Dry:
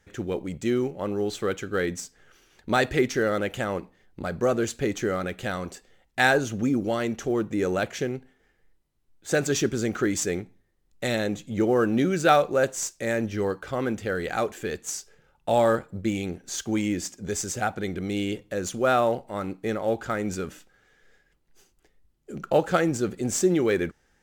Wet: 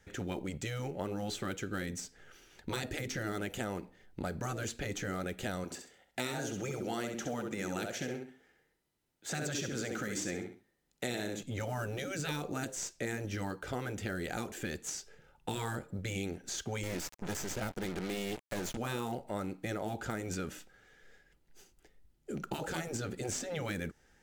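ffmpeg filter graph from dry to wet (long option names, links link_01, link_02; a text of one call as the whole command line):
ffmpeg -i in.wav -filter_complex "[0:a]asettb=1/sr,asplit=3[link_01][link_02][link_03];[link_01]atrim=end=5.644[link_04];[link_02]atrim=start=5.64:end=11.43,asetpts=PTS-STARTPTS,afade=type=in:duration=0.004:curve=qsin,afade=type=out:start_time=5.786:duration=0.004:curve=qsin,highpass=frequency=240:poles=1,aecho=1:1:66|132|198:0.398|0.107|0.029,atrim=end_sample=255339[link_05];[link_03]atrim=start=11.426[link_06];[link_04][link_05]acrossfade=duration=0.004:curve1=hsin:curve2=qsin[link_07];[link_07][link_06]acrossfade=duration=0.004:curve1=qsin:curve2=hsin,asettb=1/sr,asplit=3[link_08][link_09][link_10];[link_08]atrim=end=16.834[link_11];[link_09]atrim=start=16.83:end=18.77,asetpts=PTS-STARTPTS,afade=type=in:duration=0.004:curve=qsin,afade=type=out:start_time=1.936:duration=0.004:curve=qsin,aeval=exprs='if(lt(val(0),0),0.251*val(0),val(0))':channel_layout=same,lowshelf=frequency=130:gain=5,acrusher=bits=5:mix=0:aa=0.5[link_12];[link_10]atrim=start=18.766[link_13];[link_11][link_12]acrossfade=duration=0.004:curve1=hsin:curve2=qsin[link_14];[link_14][link_13]acrossfade=duration=0.004:curve1=qsin:curve2=hsin,bandreject=frequency=1100:width=10,afftfilt=real='re*lt(hypot(re,im),0.251)':imag='im*lt(hypot(re,im),0.251)':win_size=1024:overlap=0.75,acrossover=split=580|5300[link_15][link_16][link_17];[link_15]acompressor=threshold=-36dB:ratio=4[link_18];[link_16]acompressor=threshold=-41dB:ratio=4[link_19];[link_17]acompressor=threshold=-45dB:ratio=4[link_20];[link_18][link_19][link_20]amix=inputs=3:normalize=0" out.wav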